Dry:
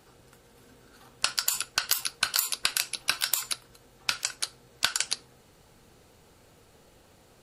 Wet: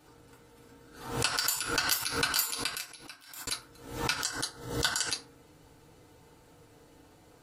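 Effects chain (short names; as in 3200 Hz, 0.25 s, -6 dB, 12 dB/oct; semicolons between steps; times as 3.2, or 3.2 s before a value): 2.42–3.47 fade out quadratic; 4.1–5.06 Butterworth band-stop 2400 Hz, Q 3.5; FDN reverb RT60 0.39 s, low-frequency decay 1.2×, high-frequency decay 0.5×, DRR -3.5 dB; backwards sustainer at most 85 dB/s; gain -6 dB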